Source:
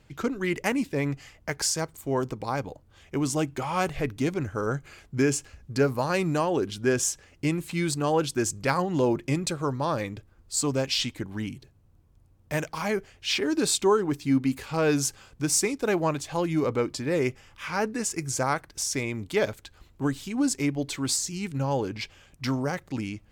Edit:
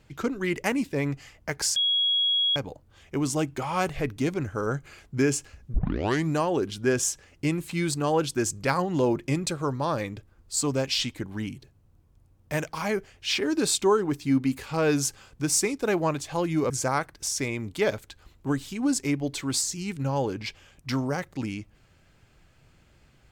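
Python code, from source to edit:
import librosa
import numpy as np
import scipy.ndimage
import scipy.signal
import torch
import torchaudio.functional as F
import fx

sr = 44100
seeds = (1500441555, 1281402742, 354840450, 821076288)

y = fx.edit(x, sr, fx.bleep(start_s=1.76, length_s=0.8, hz=3320.0, db=-20.5),
    fx.tape_start(start_s=5.74, length_s=0.55),
    fx.cut(start_s=16.7, length_s=1.55), tone=tone)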